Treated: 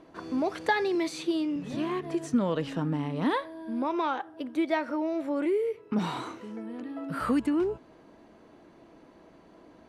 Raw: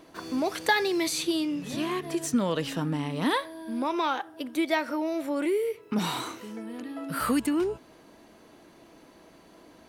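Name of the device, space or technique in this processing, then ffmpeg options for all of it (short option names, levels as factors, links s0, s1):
through cloth: -filter_complex "[0:a]lowpass=9400,highshelf=f=2600:g=-12,asettb=1/sr,asplit=3[s0][s1][s2];[s0]atrim=end=0.954[s3];[s1]atrim=start=0.95:end=1.56,asetpts=PTS-STARTPTS,afade=t=in:d=0.004:c=qsin,afade=t=out:st=0.606:d=0.004:c=qsin,highpass=160[s4];[s2]atrim=start=1.556[s5];[s3][s4]acrossfade=d=0.004:c1=hsin:c2=qsin[s6];[s6][s5]acrossfade=d=0.004:c1=qsin:c2=hsin"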